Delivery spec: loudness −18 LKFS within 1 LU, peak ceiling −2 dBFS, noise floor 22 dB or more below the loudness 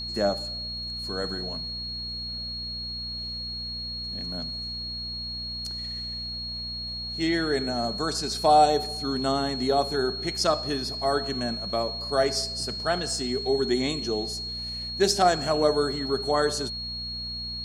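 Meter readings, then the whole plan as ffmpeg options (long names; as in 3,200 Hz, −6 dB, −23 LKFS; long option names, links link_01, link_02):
mains hum 60 Hz; hum harmonics up to 240 Hz; level of the hum −39 dBFS; interfering tone 4,300 Hz; level of the tone −32 dBFS; integrated loudness −27.0 LKFS; sample peak −7.5 dBFS; target loudness −18.0 LKFS
→ -af "bandreject=frequency=60:width_type=h:width=4,bandreject=frequency=120:width_type=h:width=4,bandreject=frequency=180:width_type=h:width=4,bandreject=frequency=240:width_type=h:width=4"
-af "bandreject=frequency=4300:width=30"
-af "volume=9dB,alimiter=limit=-2dB:level=0:latency=1"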